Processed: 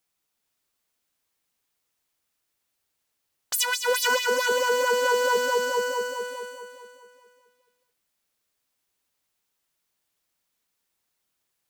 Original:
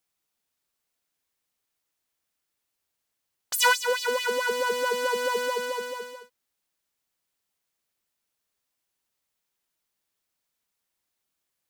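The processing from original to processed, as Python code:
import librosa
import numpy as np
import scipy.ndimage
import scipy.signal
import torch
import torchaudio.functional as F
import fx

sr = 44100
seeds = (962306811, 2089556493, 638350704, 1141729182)

y = fx.highpass(x, sr, hz=280.0, slope=12, at=(4.52, 5.37))
y = fx.echo_feedback(y, sr, ms=419, feedback_pct=30, wet_db=-5.0)
y = fx.over_compress(y, sr, threshold_db=-22.0, ratio=-0.5)
y = y * 10.0 ** (1.5 / 20.0)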